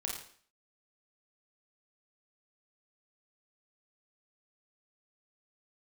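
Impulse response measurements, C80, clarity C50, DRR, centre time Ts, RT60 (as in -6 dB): 7.0 dB, 3.0 dB, -1.0 dB, 39 ms, 0.50 s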